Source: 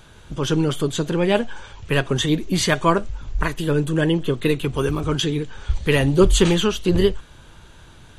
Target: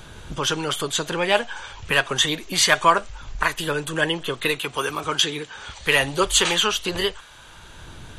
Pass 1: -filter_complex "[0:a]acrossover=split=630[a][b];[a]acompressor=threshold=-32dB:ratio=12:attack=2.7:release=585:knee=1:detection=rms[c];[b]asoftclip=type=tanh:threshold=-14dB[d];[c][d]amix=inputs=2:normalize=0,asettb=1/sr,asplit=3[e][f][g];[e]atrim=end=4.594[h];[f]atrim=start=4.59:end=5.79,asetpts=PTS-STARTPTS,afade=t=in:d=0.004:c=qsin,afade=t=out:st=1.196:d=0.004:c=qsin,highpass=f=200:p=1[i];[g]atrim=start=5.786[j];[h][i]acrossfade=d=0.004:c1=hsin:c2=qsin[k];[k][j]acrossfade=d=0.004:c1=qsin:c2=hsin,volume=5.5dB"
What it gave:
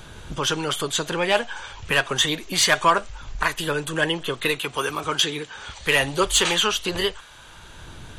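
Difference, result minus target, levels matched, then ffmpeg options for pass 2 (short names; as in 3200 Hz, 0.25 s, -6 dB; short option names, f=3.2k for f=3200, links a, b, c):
soft clip: distortion +9 dB
-filter_complex "[0:a]acrossover=split=630[a][b];[a]acompressor=threshold=-32dB:ratio=12:attack=2.7:release=585:knee=1:detection=rms[c];[b]asoftclip=type=tanh:threshold=-8dB[d];[c][d]amix=inputs=2:normalize=0,asettb=1/sr,asplit=3[e][f][g];[e]atrim=end=4.594[h];[f]atrim=start=4.59:end=5.79,asetpts=PTS-STARTPTS,afade=t=in:d=0.004:c=qsin,afade=t=out:st=1.196:d=0.004:c=qsin,highpass=f=200:p=1[i];[g]atrim=start=5.786[j];[h][i]acrossfade=d=0.004:c1=hsin:c2=qsin[k];[k][j]acrossfade=d=0.004:c1=qsin:c2=hsin,volume=5.5dB"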